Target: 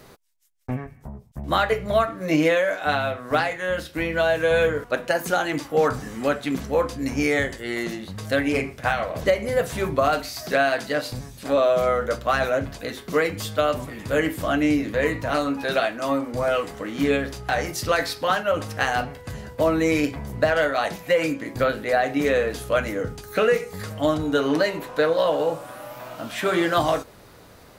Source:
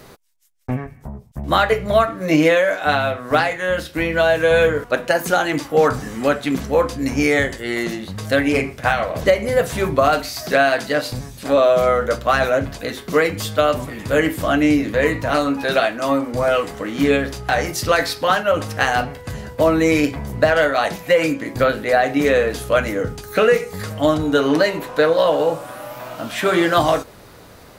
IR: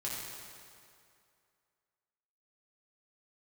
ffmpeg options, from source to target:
-af "volume=0.562"

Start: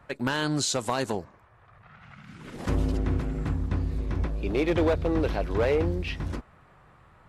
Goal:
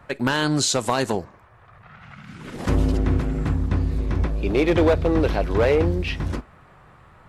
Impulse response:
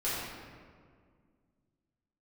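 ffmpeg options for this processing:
-filter_complex "[0:a]asplit=2[s0][s1];[1:a]atrim=start_sample=2205,atrim=end_sample=3087[s2];[s1][s2]afir=irnorm=-1:irlink=0,volume=0.0631[s3];[s0][s3]amix=inputs=2:normalize=0,volume=1.88"

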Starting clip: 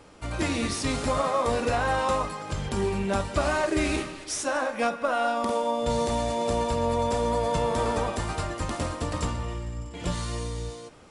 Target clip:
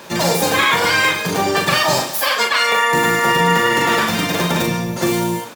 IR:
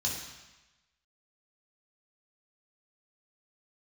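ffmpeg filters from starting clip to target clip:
-filter_complex "[0:a]highpass=91,asplit=2[s0][s1];[s1]acompressor=threshold=0.0224:ratio=16,volume=1.12[s2];[s0][s2]amix=inputs=2:normalize=0,asplit=3[s3][s4][s5];[s4]asetrate=22050,aresample=44100,atempo=2,volume=0.178[s6];[s5]asetrate=66075,aresample=44100,atempo=0.66742,volume=0.708[s7];[s3][s6][s7]amix=inputs=3:normalize=0,aecho=1:1:81:0.562,asplit=2[s8][s9];[1:a]atrim=start_sample=2205[s10];[s9][s10]afir=irnorm=-1:irlink=0,volume=0.2[s11];[s8][s11]amix=inputs=2:normalize=0,asetrate=88200,aresample=44100,volume=1.88"

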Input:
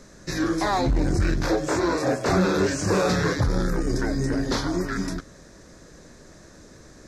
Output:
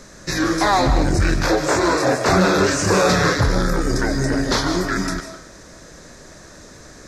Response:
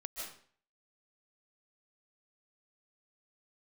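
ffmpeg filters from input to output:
-filter_complex "[0:a]asplit=2[s0][s1];[s1]highpass=490[s2];[1:a]atrim=start_sample=2205[s3];[s2][s3]afir=irnorm=-1:irlink=0,volume=0.891[s4];[s0][s4]amix=inputs=2:normalize=0,volume=1.68"

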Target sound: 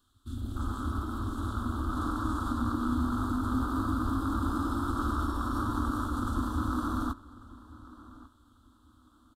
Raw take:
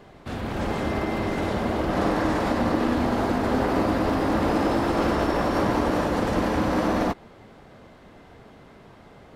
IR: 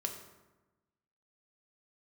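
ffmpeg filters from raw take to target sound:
-filter_complex "[0:a]afwtdn=0.0447,firequalizer=gain_entry='entry(100,0);entry(160,-28);entry(250,-2);entry(450,-25);entry(680,-24);entry(1300,4);entry(2100,-30);entry(3400,8);entry(5300,1);entry(7900,13)':delay=0.05:min_phase=1,asplit=2[s0][s1];[s1]adelay=1144,lowpass=f=4100:p=1,volume=0.112,asplit=2[s2][s3];[s3]adelay=1144,lowpass=f=4100:p=1,volume=0.27[s4];[s0][s2][s4]amix=inputs=3:normalize=0"

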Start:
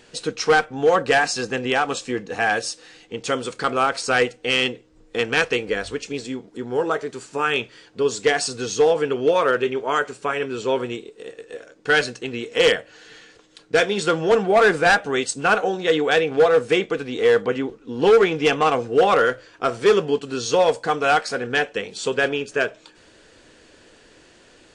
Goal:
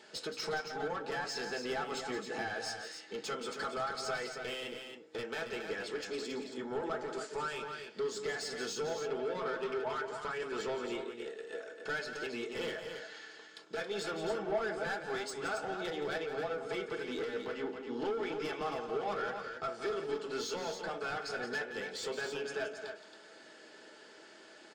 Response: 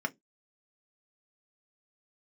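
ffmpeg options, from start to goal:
-filter_complex "[0:a]highpass=470,acompressor=threshold=0.0355:ratio=4,asoftclip=type=tanh:threshold=0.0316,aecho=1:1:172|274.1:0.316|0.447,asplit=2[s0][s1];[1:a]atrim=start_sample=2205[s2];[s1][s2]afir=irnorm=-1:irlink=0,volume=0.75[s3];[s0][s3]amix=inputs=2:normalize=0,volume=0.668"

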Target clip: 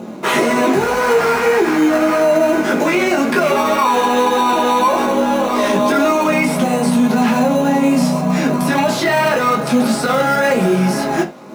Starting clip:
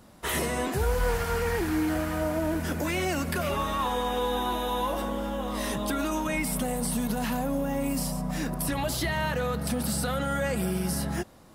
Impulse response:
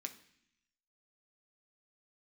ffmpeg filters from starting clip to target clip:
-filter_complex "[0:a]highpass=440,aemphasis=mode=reproduction:type=riaa,bandreject=f=1800:w=12,acrossover=split=580[s0][s1];[s0]acompressor=mode=upward:threshold=0.01:ratio=2.5[s2];[s2][s1]amix=inputs=2:normalize=0,flanger=delay=17:depth=3.5:speed=1.8,asplit=2[s3][s4];[s4]acrusher=samples=13:mix=1:aa=0.000001,volume=0.282[s5];[s3][s5]amix=inputs=2:normalize=0,asoftclip=type=tanh:threshold=0.1[s6];[1:a]atrim=start_sample=2205,atrim=end_sample=3528[s7];[s6][s7]afir=irnorm=-1:irlink=0,alimiter=level_in=26.6:limit=0.891:release=50:level=0:latency=1,volume=0.596"

